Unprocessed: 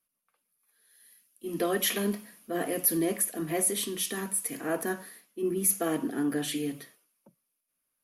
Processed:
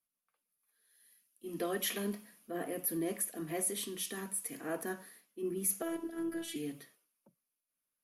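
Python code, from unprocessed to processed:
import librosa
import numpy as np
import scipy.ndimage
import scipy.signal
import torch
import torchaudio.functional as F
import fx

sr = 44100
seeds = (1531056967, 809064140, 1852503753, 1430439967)

y = fx.peak_eq(x, sr, hz=5600.0, db=-6.5, octaves=1.9, at=(2.51, 3.06))
y = fx.robotise(y, sr, hz=331.0, at=(5.82, 6.56))
y = y * librosa.db_to_amplitude(-7.5)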